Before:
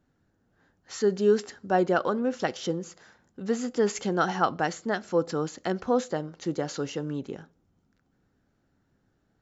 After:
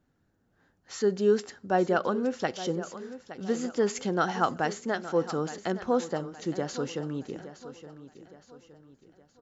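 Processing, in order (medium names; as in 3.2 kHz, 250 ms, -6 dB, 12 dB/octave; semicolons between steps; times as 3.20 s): feedback delay 867 ms, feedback 42%, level -14 dB; trim -1.5 dB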